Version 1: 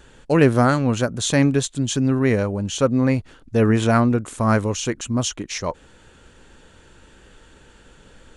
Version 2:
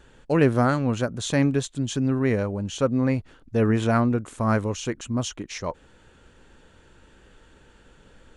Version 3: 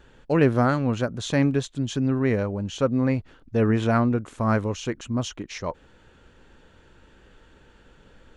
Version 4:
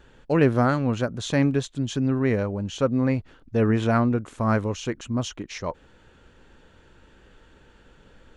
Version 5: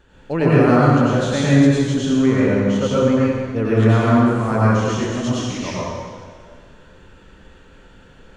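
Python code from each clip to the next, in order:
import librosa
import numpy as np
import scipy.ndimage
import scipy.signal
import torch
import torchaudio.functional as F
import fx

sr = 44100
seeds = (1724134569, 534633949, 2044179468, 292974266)

y1 = fx.high_shelf(x, sr, hz=4100.0, db=-5.5)
y1 = y1 * 10.0 ** (-4.0 / 20.0)
y2 = fx.peak_eq(y1, sr, hz=9100.0, db=-8.5, octaves=0.83)
y3 = y2
y4 = fx.rev_plate(y3, sr, seeds[0], rt60_s=1.8, hf_ratio=0.85, predelay_ms=80, drr_db=-8.0)
y4 = y4 * 10.0 ** (-1.5 / 20.0)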